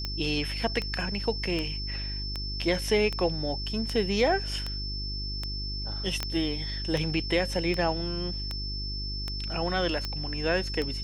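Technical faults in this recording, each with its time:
mains hum 50 Hz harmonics 8 −35 dBFS
scratch tick 78 rpm −17 dBFS
whistle 5,300 Hz −35 dBFS
0:06.23: click −13 dBFS

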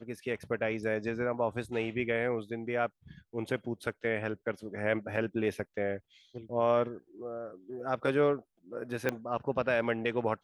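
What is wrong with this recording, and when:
0:09.09: click −16 dBFS

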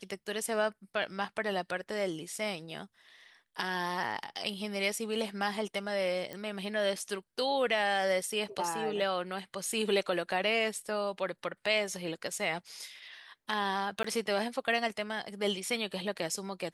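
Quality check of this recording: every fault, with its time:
0:06.33: click −25 dBFS
0:14.03–0:14.04: drop-out 14 ms

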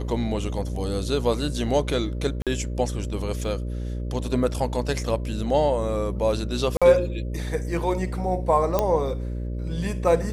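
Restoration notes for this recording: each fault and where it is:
mains buzz 60 Hz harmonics 10 −29 dBFS
0:02.42–0:02.47: drop-out 47 ms
0:03.44: drop-out 3.8 ms
0:06.77–0:06.82: drop-out 46 ms
0:08.79: click −8 dBFS

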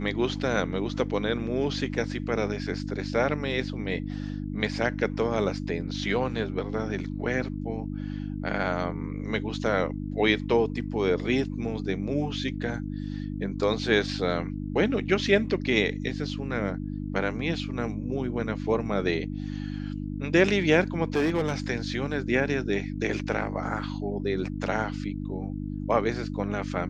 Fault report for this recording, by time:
mains hum 50 Hz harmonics 6 −33 dBFS
0:21.15–0:21.54: clipping −20 dBFS

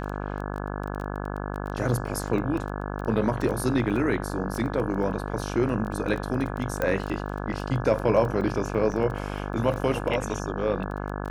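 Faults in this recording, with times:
mains buzz 50 Hz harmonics 34 −32 dBFS
surface crackle 14 per second −30 dBFS
0:04.53: drop-out 2.5 ms
0:06.82: click −14 dBFS
0:08.92: drop-out 3.3 ms

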